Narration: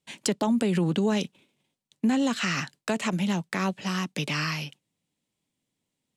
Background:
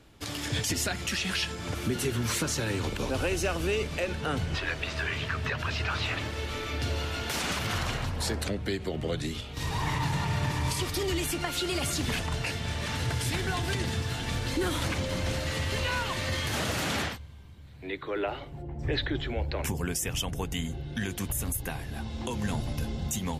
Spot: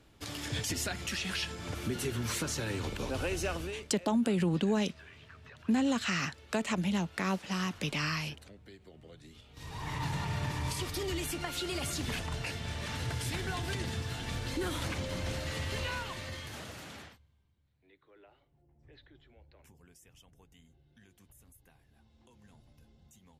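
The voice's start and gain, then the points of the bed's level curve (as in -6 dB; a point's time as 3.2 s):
3.65 s, -4.5 dB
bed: 3.56 s -5 dB
3.94 s -22 dB
9.21 s -22 dB
10.04 s -5.5 dB
15.82 s -5.5 dB
17.95 s -29 dB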